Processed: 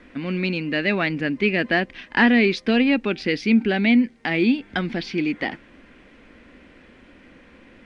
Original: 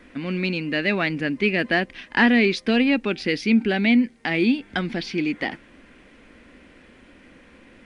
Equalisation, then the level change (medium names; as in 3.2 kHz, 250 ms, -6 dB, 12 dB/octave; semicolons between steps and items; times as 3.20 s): distance through air 61 m; +1.0 dB